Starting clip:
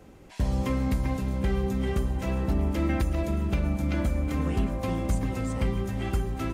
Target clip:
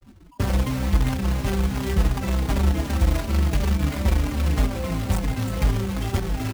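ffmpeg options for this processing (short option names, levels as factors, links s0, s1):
-filter_complex "[0:a]afftfilt=real='re*gte(hypot(re,im),0.0158)':imag='im*gte(hypot(re,im),0.0158)':win_size=1024:overlap=0.75,acrossover=split=170[s0][s1];[s1]acompressor=threshold=0.0158:ratio=6[s2];[s0][s2]amix=inputs=2:normalize=0,acrusher=bits=2:mode=log:mix=0:aa=0.000001,asplit=2[s3][s4];[s4]aecho=0:1:286:0.15[s5];[s3][s5]amix=inputs=2:normalize=0,asplit=2[s6][s7];[s7]adelay=4.4,afreqshift=-2.8[s8];[s6][s8]amix=inputs=2:normalize=1,volume=2.66"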